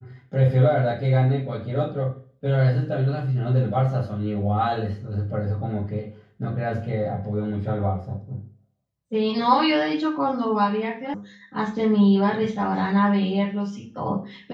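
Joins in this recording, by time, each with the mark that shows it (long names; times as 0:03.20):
0:11.14: cut off before it has died away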